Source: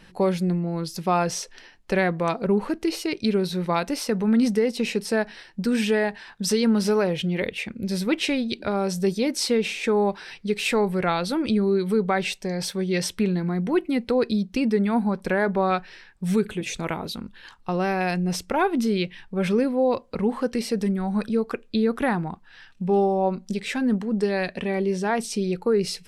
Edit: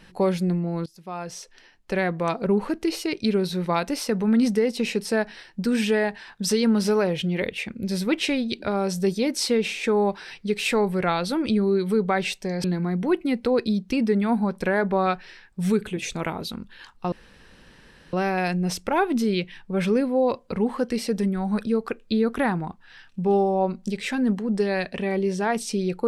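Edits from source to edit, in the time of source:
0:00.86–0:02.40: fade in, from −22 dB
0:12.64–0:13.28: remove
0:17.76: splice in room tone 1.01 s

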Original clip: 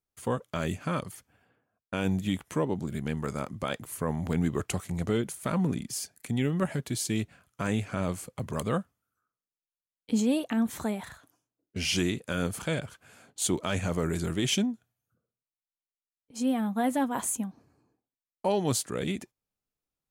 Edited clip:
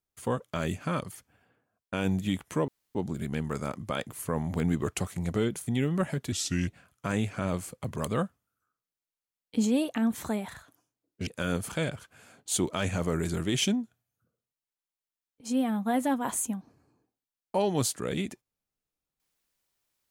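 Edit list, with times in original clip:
0:02.68: splice in room tone 0.27 s
0:05.40–0:06.29: remove
0:06.94–0:07.23: play speed 81%
0:11.82–0:12.17: remove

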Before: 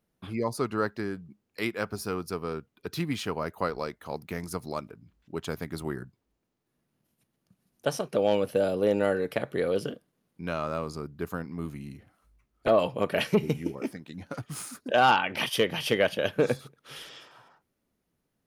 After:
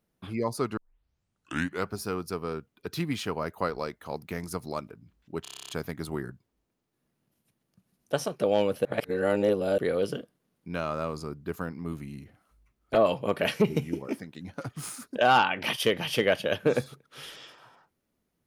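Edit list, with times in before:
0:00.77: tape start 1.15 s
0:05.42: stutter 0.03 s, 10 plays
0:08.58–0:09.51: reverse

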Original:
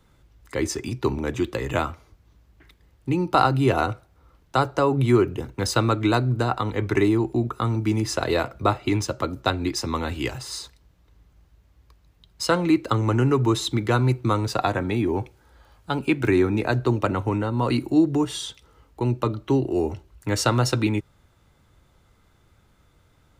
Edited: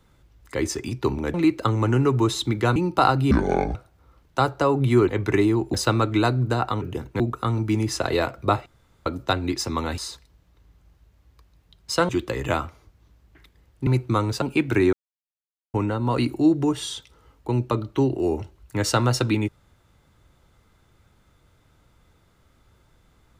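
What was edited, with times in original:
0:01.34–0:03.12: swap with 0:12.60–0:14.02
0:03.67–0:03.92: play speed 57%
0:05.25–0:05.63: swap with 0:06.71–0:07.37
0:08.83–0:09.23: fill with room tone
0:10.15–0:10.49: remove
0:14.57–0:15.94: remove
0:16.45–0:17.26: silence

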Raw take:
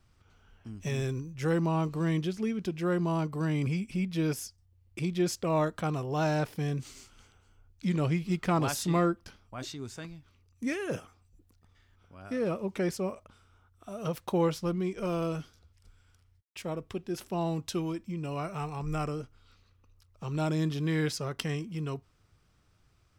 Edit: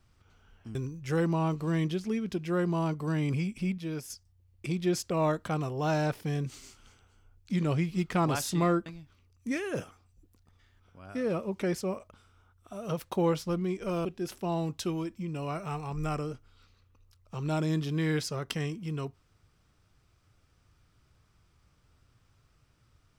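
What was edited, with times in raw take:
0:00.75–0:01.08: remove
0:04.11–0:04.43: clip gain −6.5 dB
0:09.19–0:10.02: remove
0:15.21–0:16.94: remove

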